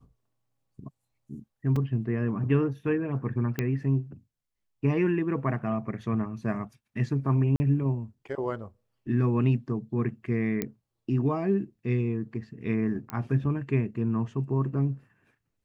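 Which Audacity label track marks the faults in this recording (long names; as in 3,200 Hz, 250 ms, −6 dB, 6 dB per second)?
1.760000	1.760000	drop-out 3.7 ms
3.590000	3.590000	click −14 dBFS
7.560000	7.600000	drop-out 40 ms
10.620000	10.620000	click −14 dBFS
13.100000	13.100000	click −19 dBFS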